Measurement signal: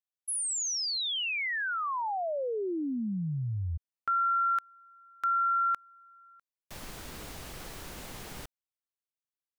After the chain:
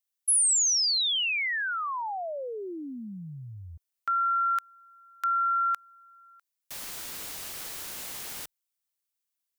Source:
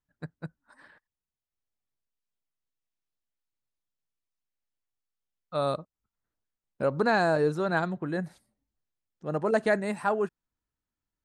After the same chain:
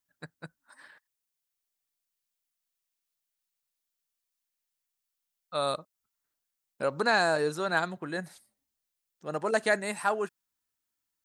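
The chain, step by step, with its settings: tilt +3 dB/oct

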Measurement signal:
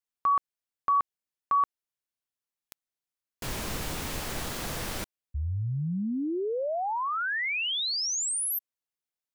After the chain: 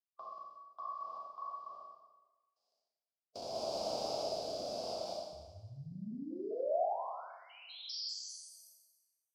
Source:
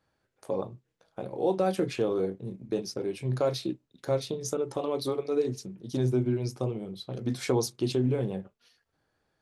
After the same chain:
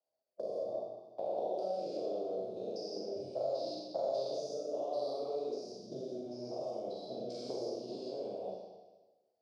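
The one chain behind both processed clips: stepped spectrum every 0.2 s; gate -48 dBFS, range -23 dB; harmonic-percussive split percussive +5 dB; high shelf 2700 Hz -10.5 dB; compressor, threshold -30 dBFS; rotary speaker horn 0.7 Hz; double band-pass 1800 Hz, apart 2.9 oct; Schroeder reverb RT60 0.98 s, combs from 29 ms, DRR -3.5 dB; three-band squash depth 40%; gain +9 dB

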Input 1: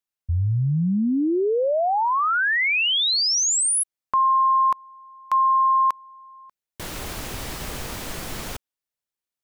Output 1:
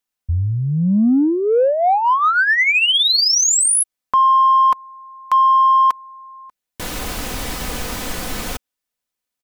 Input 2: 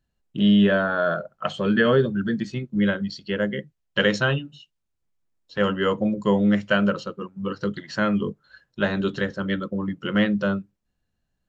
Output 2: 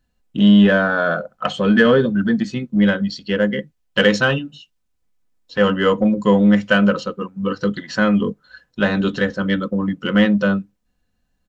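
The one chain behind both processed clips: comb 4 ms, depth 40%; in parallel at -8 dB: soft clip -19.5 dBFS; on the sum: gain +3 dB

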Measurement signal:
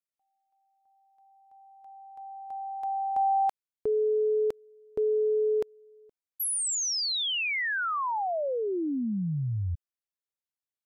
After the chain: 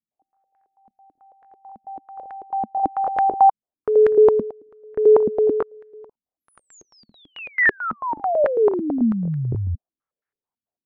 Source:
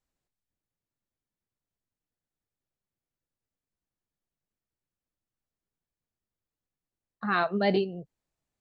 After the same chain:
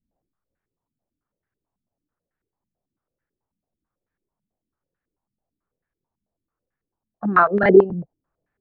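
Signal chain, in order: crackling interface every 0.27 s, samples 1024, repeat, from 0.32; stepped low-pass 9.1 Hz 220–1700 Hz; gain +5.5 dB

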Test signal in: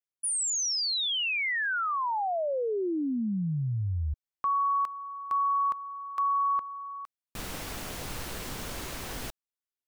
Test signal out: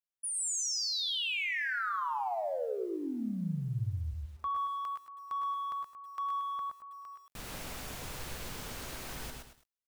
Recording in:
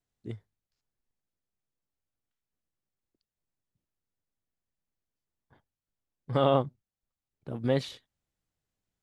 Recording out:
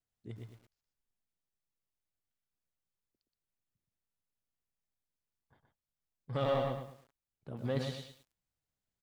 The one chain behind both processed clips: bell 320 Hz -3 dB 0.8 oct; soft clip -19.5 dBFS; echo 0.122 s -5 dB; lo-fi delay 0.106 s, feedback 35%, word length 9-bit, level -7 dB; gain -6 dB

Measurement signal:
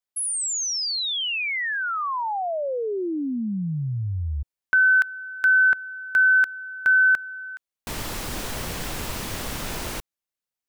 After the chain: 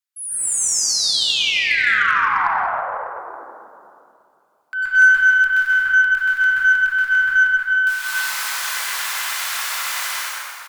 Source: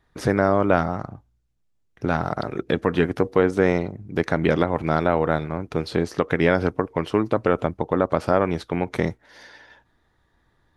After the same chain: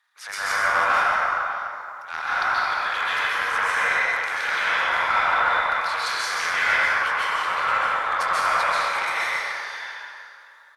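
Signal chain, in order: HPF 1100 Hz 24 dB/oct; in parallel at +0.5 dB: compressor, threshold -32 dBFS; on the sum: tapped delay 94/124/126/221/603 ms -15.5/-8.5/-7/-12/-14.5 dB; hard clip -12 dBFS; transient shaper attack -8 dB, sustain +9 dB; plate-style reverb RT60 2.5 s, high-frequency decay 0.45×, pre-delay 0.12 s, DRR -9 dB; added harmonics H 4 -43 dB, 6 -31 dB, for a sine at 0.5 dBFS; gain -4.5 dB

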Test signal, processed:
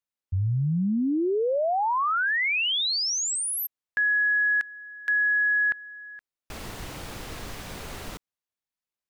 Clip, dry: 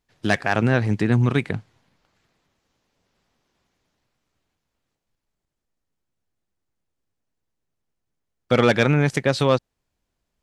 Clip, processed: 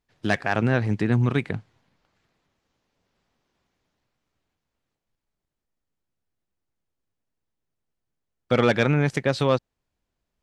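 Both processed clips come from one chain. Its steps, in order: high shelf 6400 Hz -6 dB; gain -2.5 dB

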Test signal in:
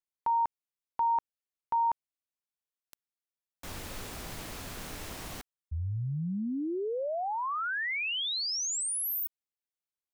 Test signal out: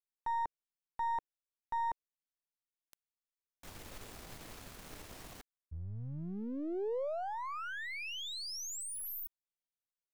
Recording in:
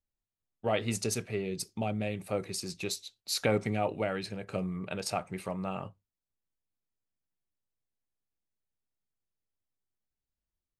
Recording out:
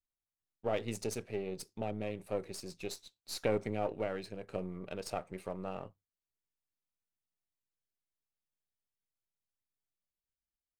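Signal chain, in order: half-wave gain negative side -7 dB; dynamic EQ 470 Hz, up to +7 dB, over -49 dBFS, Q 0.97; gain -7 dB

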